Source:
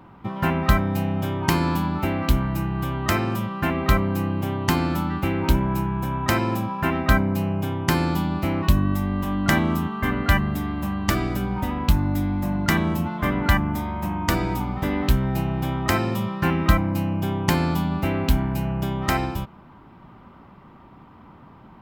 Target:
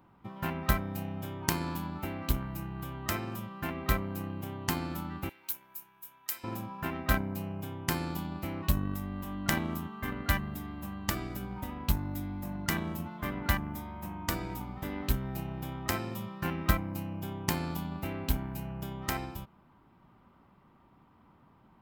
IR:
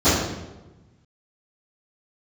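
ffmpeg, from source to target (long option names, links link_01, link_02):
-filter_complex "[0:a]aeval=exprs='0.668*(cos(1*acos(clip(val(0)/0.668,-1,1)))-cos(1*PI/2))+0.188*(cos(3*acos(clip(val(0)/0.668,-1,1)))-cos(3*PI/2))+0.0596*(cos(5*acos(clip(val(0)/0.668,-1,1)))-cos(5*PI/2))+0.0266*(cos(7*acos(clip(val(0)/0.668,-1,1)))-cos(7*PI/2))':channel_layout=same,asettb=1/sr,asplit=3[link_01][link_02][link_03];[link_01]atrim=end=5.294[link_04];[link_02]atrim=start=5.29:end=6.44,asetpts=PTS-STARTPTS,afade=type=in:duration=0.004:curve=qsin,afade=type=out:start_time=1.146:duration=0.004:curve=qsin,aderivative[link_05];[link_03]atrim=start=6.436[link_06];[link_04][link_05]acrossfade=duration=0.004:curve1=hsin:curve2=qsin[link_07];[link_07][link_06]acrossfade=duration=0.004:curve1=qsin:curve2=hsin,crystalizer=i=1:c=0,volume=-4.5dB"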